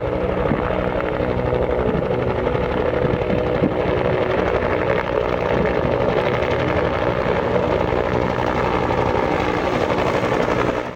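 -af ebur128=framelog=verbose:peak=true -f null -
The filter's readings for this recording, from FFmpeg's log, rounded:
Integrated loudness:
  I:         -19.7 LUFS
  Threshold: -29.7 LUFS
Loudness range:
  LRA:         0.9 LU
  Threshold: -39.6 LUFS
  LRA low:   -20.2 LUFS
  LRA high:  -19.4 LUFS
True peak:
  Peak:       -5.1 dBFS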